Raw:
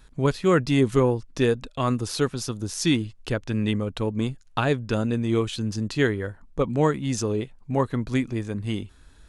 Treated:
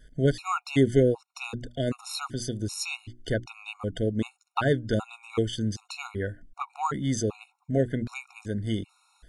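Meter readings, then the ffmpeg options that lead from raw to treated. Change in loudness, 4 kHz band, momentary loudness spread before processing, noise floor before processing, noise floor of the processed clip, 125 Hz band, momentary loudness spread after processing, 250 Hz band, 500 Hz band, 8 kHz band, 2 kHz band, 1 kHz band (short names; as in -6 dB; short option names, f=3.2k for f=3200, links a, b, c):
-4.0 dB, -4.0 dB, 9 LU, -52 dBFS, -72 dBFS, -4.0 dB, 12 LU, -5.0 dB, -3.5 dB, -3.0 dB, -4.5 dB, -3.0 dB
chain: -af "bandreject=f=60:t=h:w=6,bandreject=f=120:t=h:w=6,bandreject=f=180:t=h:w=6,bandreject=f=240:t=h:w=6,bandreject=f=300:t=h:w=6,bandreject=f=360:t=h:w=6,afftfilt=real='re*gt(sin(2*PI*1.3*pts/sr)*(1-2*mod(floor(b*sr/1024/730),2)),0)':imag='im*gt(sin(2*PI*1.3*pts/sr)*(1-2*mod(floor(b*sr/1024/730),2)),0)':win_size=1024:overlap=0.75"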